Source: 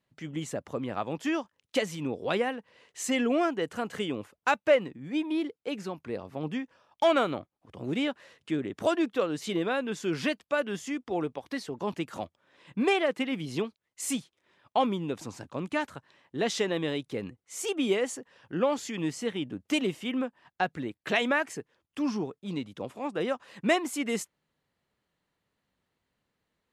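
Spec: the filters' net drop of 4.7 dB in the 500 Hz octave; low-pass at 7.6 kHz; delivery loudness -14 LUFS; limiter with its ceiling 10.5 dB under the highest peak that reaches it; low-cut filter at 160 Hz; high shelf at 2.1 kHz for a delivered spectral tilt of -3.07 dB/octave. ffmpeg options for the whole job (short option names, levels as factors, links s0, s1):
-af "highpass=160,lowpass=7600,equalizer=f=500:t=o:g=-6.5,highshelf=f=2100:g=6.5,volume=9.44,alimiter=limit=0.944:level=0:latency=1"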